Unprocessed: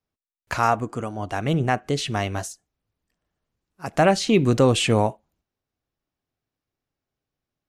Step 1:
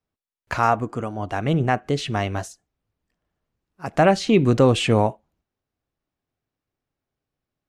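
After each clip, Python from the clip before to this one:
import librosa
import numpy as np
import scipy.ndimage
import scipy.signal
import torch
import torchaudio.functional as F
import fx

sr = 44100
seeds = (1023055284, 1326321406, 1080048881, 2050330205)

y = fx.high_shelf(x, sr, hz=4900.0, db=-9.0)
y = F.gain(torch.from_numpy(y), 1.5).numpy()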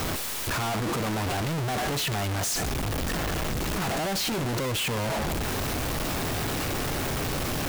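y = np.sign(x) * np.sqrt(np.mean(np.square(x)))
y = F.gain(torch.from_numpy(y), -4.0).numpy()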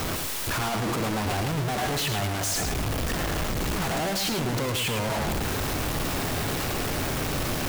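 y = x + 10.0 ** (-6.5 / 20.0) * np.pad(x, (int(108 * sr / 1000.0), 0))[:len(x)]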